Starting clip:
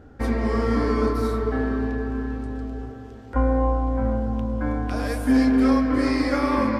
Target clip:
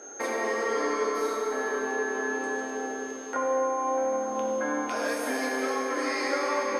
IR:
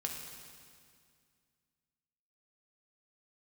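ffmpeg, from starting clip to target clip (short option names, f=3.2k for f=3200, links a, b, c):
-filter_complex "[0:a]highpass=f=380:w=0.5412,highpass=f=380:w=1.3066,acompressor=threshold=-35dB:ratio=4,aeval=exprs='val(0)+0.00224*sin(2*PI*6400*n/s)':c=same[a];[1:a]atrim=start_sample=2205,asetrate=33516,aresample=44100[b];[a][b]afir=irnorm=-1:irlink=0,volume=5.5dB"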